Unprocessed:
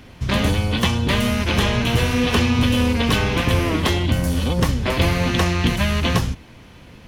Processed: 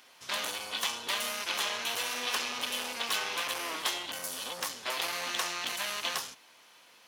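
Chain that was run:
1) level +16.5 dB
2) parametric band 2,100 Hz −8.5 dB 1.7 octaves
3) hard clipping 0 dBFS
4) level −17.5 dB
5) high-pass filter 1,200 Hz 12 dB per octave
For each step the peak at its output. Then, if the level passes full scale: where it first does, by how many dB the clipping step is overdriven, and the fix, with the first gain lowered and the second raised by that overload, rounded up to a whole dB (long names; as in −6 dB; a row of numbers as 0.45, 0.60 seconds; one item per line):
+10.0, +9.5, 0.0, −17.5, −15.0 dBFS
step 1, 9.5 dB
step 1 +6.5 dB, step 4 −7.5 dB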